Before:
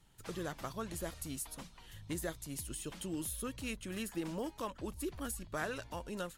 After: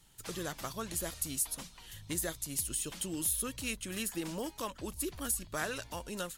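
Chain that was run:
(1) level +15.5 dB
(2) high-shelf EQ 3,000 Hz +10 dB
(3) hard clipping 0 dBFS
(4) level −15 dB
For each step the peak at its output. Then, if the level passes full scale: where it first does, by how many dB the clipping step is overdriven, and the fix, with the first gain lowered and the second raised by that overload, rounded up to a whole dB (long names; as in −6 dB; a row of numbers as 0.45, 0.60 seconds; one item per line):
−9.5, −2.0, −2.0, −17.0 dBFS
no step passes full scale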